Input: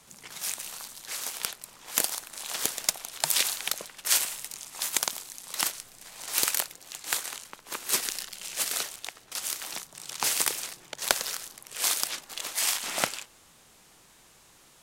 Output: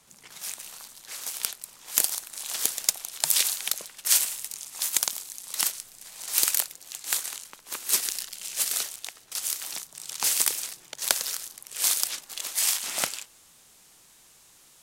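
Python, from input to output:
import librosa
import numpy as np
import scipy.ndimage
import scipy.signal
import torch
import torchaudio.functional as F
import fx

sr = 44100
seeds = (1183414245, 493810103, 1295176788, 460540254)

y = fx.high_shelf(x, sr, hz=3500.0, db=fx.steps((0.0, 2.0), (1.26, 9.0)))
y = y * librosa.db_to_amplitude(-4.5)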